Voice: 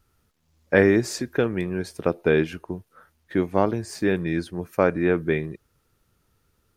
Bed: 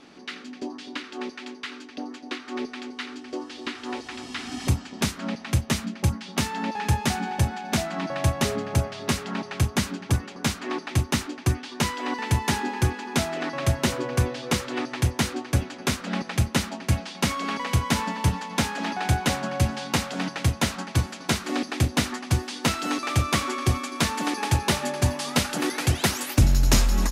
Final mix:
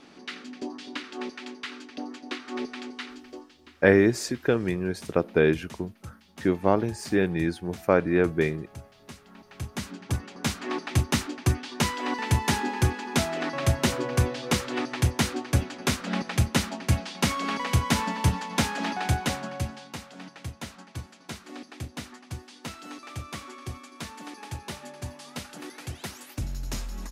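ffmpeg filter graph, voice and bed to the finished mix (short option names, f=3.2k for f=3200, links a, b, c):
-filter_complex "[0:a]adelay=3100,volume=-1dB[a];[1:a]volume=18dB,afade=t=out:st=2.86:d=0.72:silence=0.11885,afade=t=in:st=9.39:d=1.44:silence=0.105925,afade=t=out:st=18.83:d=1.09:silence=0.199526[b];[a][b]amix=inputs=2:normalize=0"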